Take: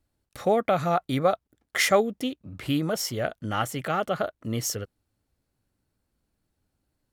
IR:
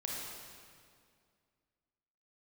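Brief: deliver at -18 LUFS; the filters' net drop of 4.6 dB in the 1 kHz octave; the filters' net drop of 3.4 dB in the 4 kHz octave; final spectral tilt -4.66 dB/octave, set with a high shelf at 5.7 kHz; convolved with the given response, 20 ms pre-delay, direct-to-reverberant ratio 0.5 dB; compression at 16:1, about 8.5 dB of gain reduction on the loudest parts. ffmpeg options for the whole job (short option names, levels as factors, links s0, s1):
-filter_complex "[0:a]equalizer=f=1000:t=o:g=-7,equalizer=f=4000:t=o:g=-6.5,highshelf=f=5700:g=3.5,acompressor=threshold=0.0501:ratio=16,asplit=2[s0][s1];[1:a]atrim=start_sample=2205,adelay=20[s2];[s1][s2]afir=irnorm=-1:irlink=0,volume=0.75[s3];[s0][s3]amix=inputs=2:normalize=0,volume=3.98"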